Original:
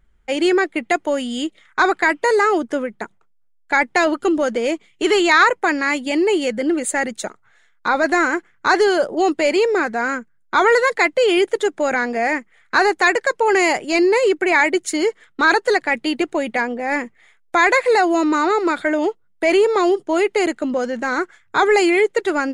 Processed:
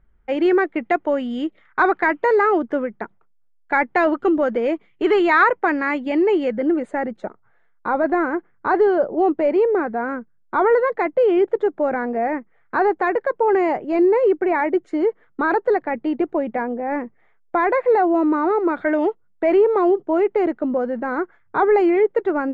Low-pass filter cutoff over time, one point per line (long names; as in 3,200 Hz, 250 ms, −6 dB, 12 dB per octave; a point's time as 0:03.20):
0:06.37 1,700 Hz
0:07.14 1,000 Hz
0:18.69 1,000 Hz
0:18.95 2,000 Hz
0:19.62 1,100 Hz